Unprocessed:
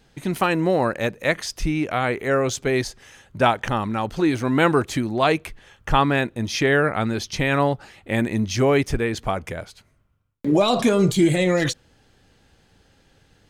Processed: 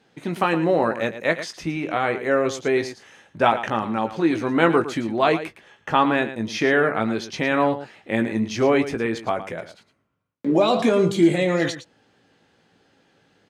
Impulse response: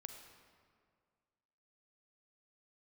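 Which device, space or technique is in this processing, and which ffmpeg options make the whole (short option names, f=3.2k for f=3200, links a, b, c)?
slapback doubling: -filter_complex "[0:a]highpass=190,aemphasis=mode=reproduction:type=50kf,asplit=3[a][b][c];[b]adelay=18,volume=-8dB[d];[c]adelay=112,volume=-12dB[e];[a][d][e]amix=inputs=3:normalize=0"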